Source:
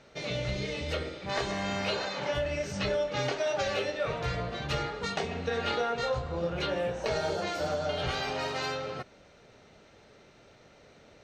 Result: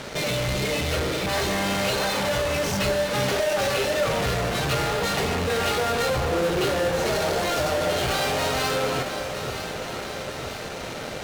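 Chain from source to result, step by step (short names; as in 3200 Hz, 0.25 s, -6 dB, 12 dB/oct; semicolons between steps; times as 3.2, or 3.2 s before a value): 6.28–6.69 bell 390 Hz +11.5 dB 0.78 oct; in parallel at -9 dB: fuzz box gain 54 dB, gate -58 dBFS; on the sum: echo with dull and thin repeats by turns 0.478 s, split 1400 Hz, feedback 79%, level -7.5 dB; gain -4.5 dB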